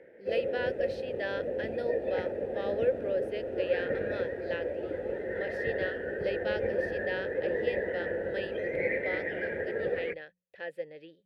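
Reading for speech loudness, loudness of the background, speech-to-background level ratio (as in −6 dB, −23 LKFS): −37.5 LKFS, −33.5 LKFS, −4.0 dB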